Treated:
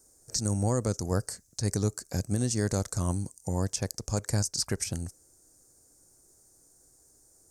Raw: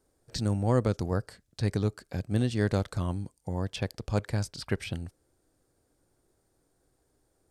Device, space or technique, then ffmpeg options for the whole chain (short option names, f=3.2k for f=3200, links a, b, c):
over-bright horn tweeter: -af "highshelf=f=4.6k:t=q:w=3:g=12,alimiter=limit=-19.5dB:level=0:latency=1:release=173,volume=2.5dB"